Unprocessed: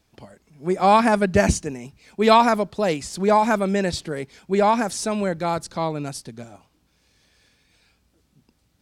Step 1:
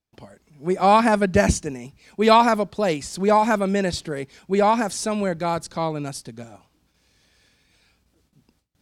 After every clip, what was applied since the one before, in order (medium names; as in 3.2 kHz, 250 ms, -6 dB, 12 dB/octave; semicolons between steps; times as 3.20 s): gate with hold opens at -55 dBFS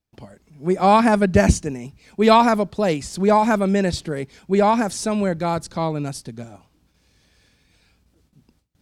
bass shelf 310 Hz +5.5 dB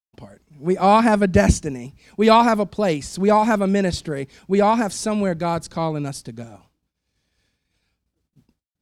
expander -50 dBFS